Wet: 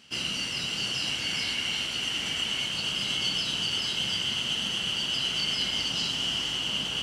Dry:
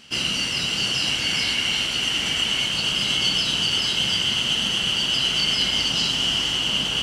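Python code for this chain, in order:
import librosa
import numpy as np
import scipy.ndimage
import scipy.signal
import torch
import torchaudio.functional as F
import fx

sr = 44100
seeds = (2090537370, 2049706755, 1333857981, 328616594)

y = scipy.signal.sosfilt(scipy.signal.butter(2, 50.0, 'highpass', fs=sr, output='sos'), x)
y = y * librosa.db_to_amplitude(-7.0)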